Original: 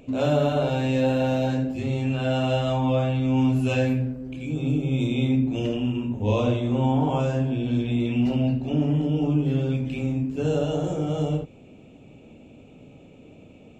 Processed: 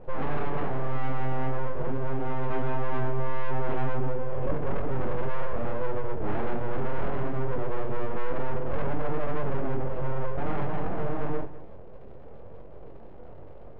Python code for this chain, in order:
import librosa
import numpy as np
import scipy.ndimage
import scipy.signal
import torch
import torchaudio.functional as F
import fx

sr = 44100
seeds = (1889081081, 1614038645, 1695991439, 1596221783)

y = fx.bandpass_q(x, sr, hz=250.0, q=1.2)
y = np.abs(y)
y = fx.dmg_crackle(y, sr, seeds[0], per_s=150.0, level_db=-51.0)
y = 10.0 ** (-27.5 / 20.0) * np.tanh(y / 10.0 ** (-27.5 / 20.0))
y = fx.air_absorb(y, sr, metres=470.0)
y = fx.doubler(y, sr, ms=22.0, db=-7.5)
y = y + 10.0 ** (-15.5 / 20.0) * np.pad(y, (int(200 * sr / 1000.0), 0))[:len(y)]
y = fx.env_flatten(y, sr, amount_pct=50, at=(2.5, 4.54))
y = y * 10.0 ** (7.5 / 20.0)